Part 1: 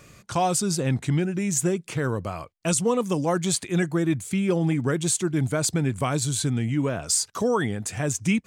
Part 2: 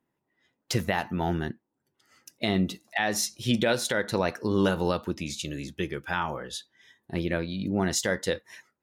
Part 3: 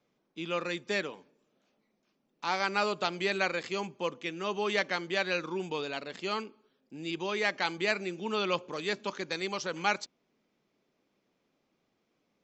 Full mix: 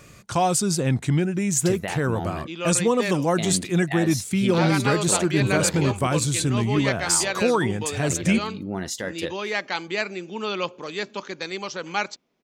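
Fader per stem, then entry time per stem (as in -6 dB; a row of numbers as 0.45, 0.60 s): +2.0, -3.5, +3.0 dB; 0.00, 0.95, 2.10 s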